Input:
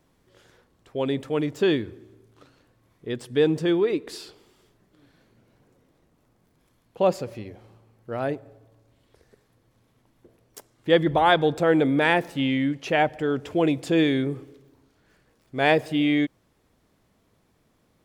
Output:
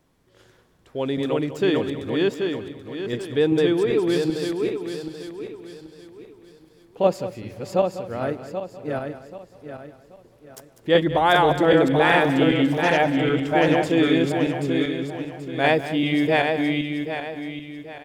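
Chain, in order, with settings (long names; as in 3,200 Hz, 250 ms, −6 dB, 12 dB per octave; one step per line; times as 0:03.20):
feedback delay that plays each chunk backwards 391 ms, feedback 58%, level −0.5 dB
on a send: single-tap delay 197 ms −13.5 dB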